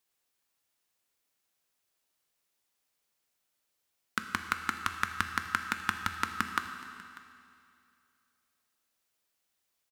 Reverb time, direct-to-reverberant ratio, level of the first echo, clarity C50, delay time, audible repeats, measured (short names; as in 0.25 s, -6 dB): 2.5 s, 6.0 dB, -21.0 dB, 7.0 dB, 0.594 s, 1